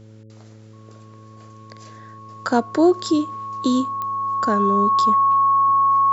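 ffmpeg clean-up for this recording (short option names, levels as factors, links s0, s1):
-af "adeclick=t=4,bandreject=f=109.1:t=h:w=4,bandreject=f=218.2:t=h:w=4,bandreject=f=327.3:t=h:w=4,bandreject=f=436.4:t=h:w=4,bandreject=f=545.5:t=h:w=4,bandreject=f=1100:w=30"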